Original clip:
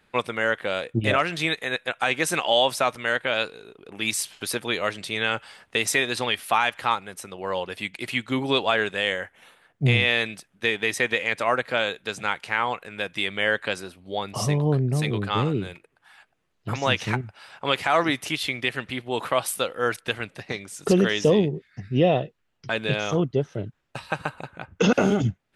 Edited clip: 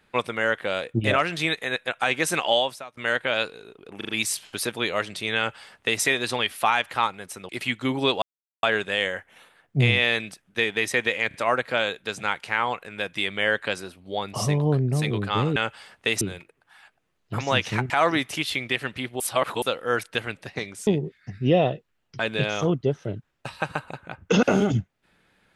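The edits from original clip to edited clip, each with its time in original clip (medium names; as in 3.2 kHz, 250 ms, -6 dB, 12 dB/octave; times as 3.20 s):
2.53–2.97 s: fade out quadratic, to -23.5 dB
3.97 s: stutter 0.04 s, 4 plays
5.25–5.90 s: copy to 15.56 s
7.37–7.96 s: delete
8.69 s: insert silence 0.41 s
11.34 s: stutter 0.03 s, 3 plays
17.25–17.83 s: delete
19.13–19.55 s: reverse
20.80–21.37 s: delete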